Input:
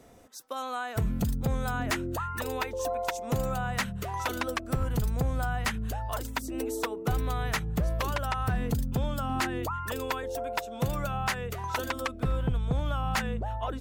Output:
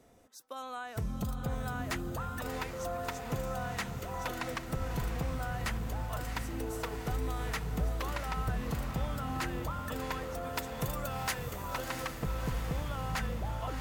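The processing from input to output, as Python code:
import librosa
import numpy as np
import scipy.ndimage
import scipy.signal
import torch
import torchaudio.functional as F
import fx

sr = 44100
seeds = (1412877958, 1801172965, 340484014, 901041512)

y = fx.high_shelf(x, sr, hz=5100.0, db=10.5, at=(10.43, 11.4))
y = fx.echo_diffused(y, sr, ms=688, feedback_pct=61, wet_db=-6)
y = F.gain(torch.from_numpy(y), -7.0).numpy()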